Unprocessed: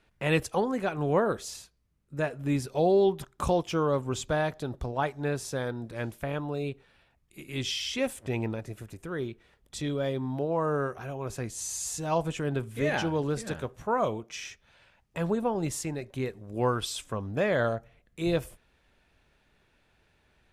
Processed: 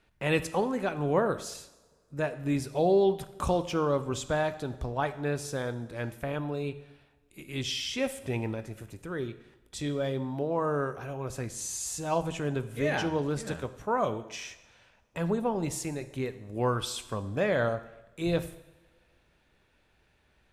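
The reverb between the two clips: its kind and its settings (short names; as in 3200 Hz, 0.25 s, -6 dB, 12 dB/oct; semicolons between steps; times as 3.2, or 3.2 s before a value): two-slope reverb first 0.89 s, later 3.1 s, from -24 dB, DRR 11.5 dB; gain -1 dB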